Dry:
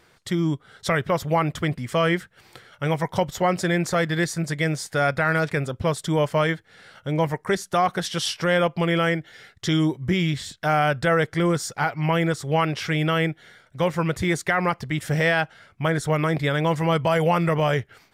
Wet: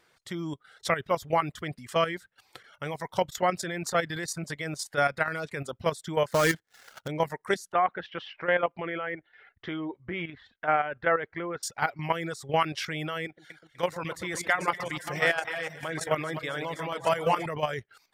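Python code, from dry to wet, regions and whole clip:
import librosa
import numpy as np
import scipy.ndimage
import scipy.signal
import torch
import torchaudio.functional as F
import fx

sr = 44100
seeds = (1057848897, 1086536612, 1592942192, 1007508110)

y = fx.chain(x, sr, fx.dead_time(dead_ms=0.12),
    fx.leveller(passes=2), at=(6.31, 7.08))
y = fx.chain(y, sr, fx.lowpass(hz=2500.0, slope=24),
    fx.peak_eq(hz=140.0, db=-8.0, octaves=1.1), at=(7.72, 11.63))
y = fx.chain(y, sr, fx.reverse_delay(ms=549, wet_db=-8.5),
    fx.low_shelf(hz=260.0, db=-5.5),
    fx.echo_split(split_hz=1600.0, low_ms=125, high_ms=249, feedback_pct=52, wet_db=-9), at=(13.25, 17.46))
y = fx.dereverb_blind(y, sr, rt60_s=0.52)
y = fx.low_shelf(y, sr, hz=230.0, db=-9.5)
y = fx.level_steps(y, sr, step_db=11)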